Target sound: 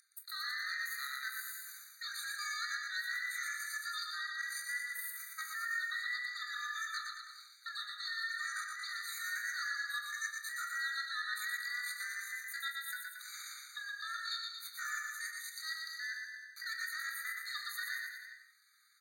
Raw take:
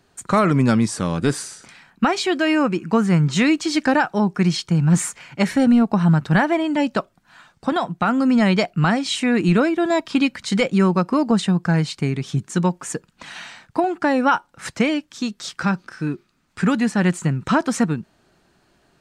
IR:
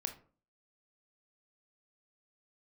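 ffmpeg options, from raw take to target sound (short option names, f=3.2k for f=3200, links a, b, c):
-filter_complex "[0:a]lowpass=f=9k:w=0.5412,lowpass=f=9k:w=1.3066,aemphasis=mode=production:type=riaa,bandreject=f=4.5k:w=27,aeval=exprs='val(0)+0.0316*sin(2*PI*4700*n/s)':c=same,areverse,acompressor=threshold=-29dB:ratio=12,areverse,highshelf=f=2.7k:g=-8.5,aeval=exprs='val(0)*sin(2*PI*1400*n/s)':c=same,asetrate=70004,aresample=44100,atempo=0.629961,aecho=1:1:120|228|325.2|412.7|491.4:0.631|0.398|0.251|0.158|0.1[a];[1:a]atrim=start_sample=2205[b];[a][b]afir=irnorm=-1:irlink=0,afftfilt=real='re*eq(mod(floor(b*sr/1024/1200),2),1)':imag='im*eq(mod(floor(b*sr/1024/1200),2),1)':win_size=1024:overlap=0.75"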